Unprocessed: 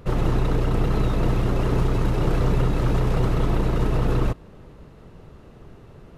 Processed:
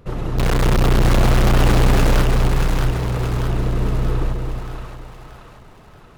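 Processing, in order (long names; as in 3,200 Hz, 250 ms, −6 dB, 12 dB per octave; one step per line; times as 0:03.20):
0:00.38–0:02.22: fuzz pedal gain 47 dB, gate −45 dBFS
echo with a time of its own for lows and highs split 670 Hz, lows 261 ms, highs 630 ms, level −4.5 dB
level −3 dB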